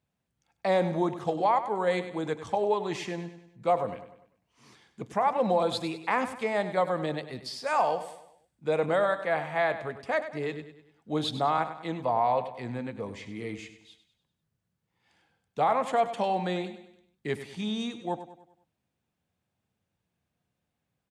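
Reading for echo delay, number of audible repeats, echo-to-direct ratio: 99 ms, 4, -11.0 dB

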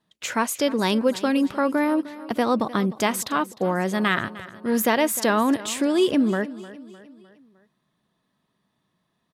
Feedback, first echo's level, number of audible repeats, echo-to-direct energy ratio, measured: 49%, -17.0 dB, 3, -16.0 dB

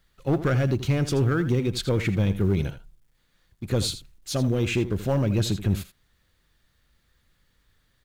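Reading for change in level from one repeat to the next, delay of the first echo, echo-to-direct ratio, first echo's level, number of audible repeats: no regular repeats, 81 ms, -13.0 dB, -13.0 dB, 1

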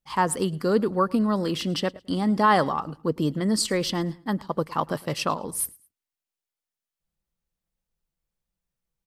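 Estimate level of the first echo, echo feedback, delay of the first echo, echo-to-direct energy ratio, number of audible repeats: -23.0 dB, 30%, 108 ms, -22.5 dB, 2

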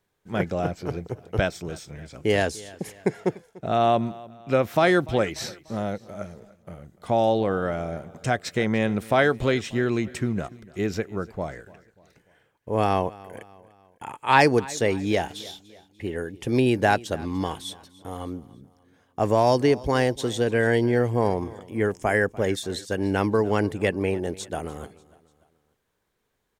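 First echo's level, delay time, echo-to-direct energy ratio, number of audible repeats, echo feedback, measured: -21.0 dB, 294 ms, -20.0 dB, 3, 46%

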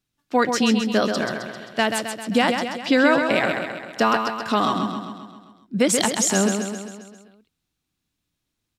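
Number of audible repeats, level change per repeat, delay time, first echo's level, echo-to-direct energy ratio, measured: 6, -5.0 dB, 132 ms, -6.0 dB, -4.5 dB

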